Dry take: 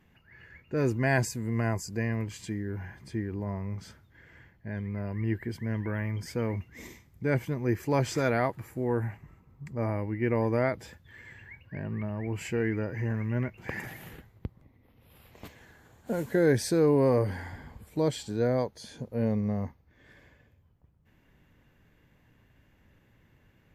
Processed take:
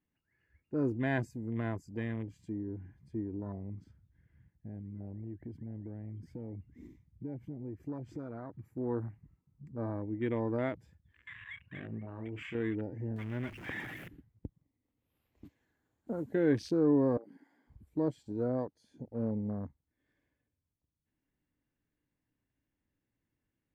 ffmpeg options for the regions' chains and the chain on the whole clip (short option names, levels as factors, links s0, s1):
-filter_complex "[0:a]asettb=1/sr,asplit=3[s0][s1][s2];[s0]atrim=end=3.844[s3];[s1]atrim=start=3.84:end=8.65,asetpts=PTS-STARTPTS,afade=t=in:d=0.004:c=qsin,afade=t=out:st=4.806:d=0.004:c=qsin,bass=f=250:g=4,treble=f=4000:g=-6,acompressor=threshold=0.0224:ratio=6:attack=3.2:release=140:knee=1:detection=peak[s4];[s2]atrim=start=8.646[s5];[s3][s4]acrossfade=d=0.004:c1=hsin:c2=qsin[s6];[s6][s5]acrossfade=d=0.004:c1=qsin:c2=hsin,asettb=1/sr,asplit=3[s7][s8][s9];[s7]atrim=end=11.274[s10];[s8]atrim=start=11.27:end=12.55,asetpts=PTS-STARTPTS,afade=t=in:d=0.004:c=qsin,afade=t=out:st=1.276:d=0.004:c=qsin,equalizer=f=2500:w=0.42:g=11,acompressor=threshold=0.0224:ratio=4:attack=3.2:release=140:knee=1:detection=peak,asplit=2[s11][s12];[s12]adelay=36,volume=0.531[s13];[s11][s13]amix=inputs=2:normalize=0,atrim=end_sample=56448[s14];[s9]atrim=start=12.546[s15];[s10][s14]acrossfade=d=0.004:c1=hsin:c2=qsin[s16];[s16][s15]acrossfade=d=0.004:c1=qsin:c2=hsin,asettb=1/sr,asplit=3[s17][s18][s19];[s17]atrim=end=13.164[s20];[s18]atrim=start=13.16:end=14.08,asetpts=PTS-STARTPTS,afade=t=in:d=0.004:c=qsin,afade=t=out:st=0.916:d=0.004:c=qsin,aeval=exprs='val(0)+0.5*0.0211*sgn(val(0))':c=same,tiltshelf=f=1100:g=-3.5[s21];[s19]atrim=start=14.076[s22];[s20][s21]acrossfade=d=0.004:c1=hsin:c2=qsin[s23];[s23][s22]acrossfade=d=0.004:c1=qsin:c2=hsin,asettb=1/sr,asplit=3[s24][s25][s26];[s24]atrim=end=17.174[s27];[s25]atrim=start=17.17:end=17.7,asetpts=PTS-STARTPTS,afade=t=in:d=0.004:c=qsin,afade=t=out:st=0.526:d=0.004:c=qsin,highpass=f=230:w=0.5412,highpass=f=230:w=1.3066,acompressor=threshold=0.00708:ratio=4:attack=3.2:release=140:knee=1:detection=peak[s28];[s26]atrim=start=17.696[s29];[s27][s28]acrossfade=d=0.004:c1=hsin:c2=qsin[s30];[s30][s29]acrossfade=d=0.004:c1=qsin:c2=hsin,afwtdn=0.0126,equalizer=f=290:t=o:w=0.47:g=9,volume=0.398"